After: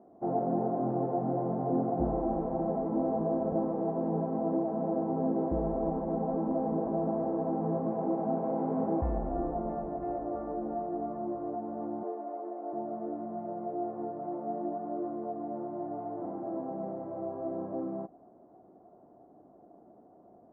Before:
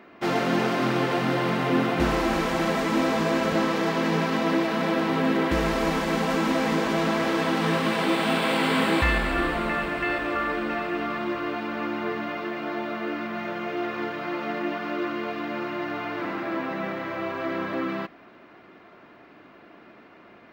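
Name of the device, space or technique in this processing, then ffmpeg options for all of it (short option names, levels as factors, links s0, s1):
under water: -filter_complex "[0:a]lowpass=f=730:w=0.5412,lowpass=f=730:w=1.3066,equalizer=f=740:t=o:w=0.33:g=9.5,asettb=1/sr,asplit=3[s0][s1][s2];[s0]atrim=end=12.034[s3];[s1]atrim=start=12.03:end=12.73,asetpts=PTS-STARTPTS,afade=t=in:d=0.004:c=qsin,afade=t=out:st=0.696:d=0.004:c=qsin,highpass=f=320:w=0.5412,highpass=f=320:w=1.3066[s4];[s2]atrim=start=12.726[s5];[s3][s4]acrossfade=d=0.004:c1=hsin:c2=qsin[s6];[s6][s5]acrossfade=d=0.004:c1=qsin:c2=hsin,volume=0.473"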